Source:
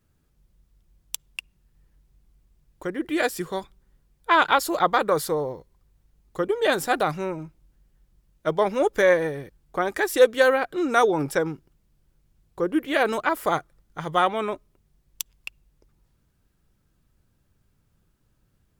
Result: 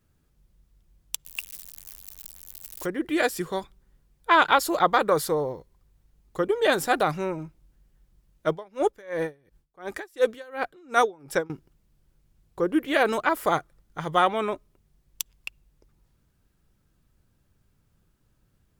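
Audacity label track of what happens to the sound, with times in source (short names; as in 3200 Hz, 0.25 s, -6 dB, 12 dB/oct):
1.250000	2.860000	switching spikes of -28.5 dBFS
8.500000	11.500000	dB-linear tremolo 2.8 Hz, depth 29 dB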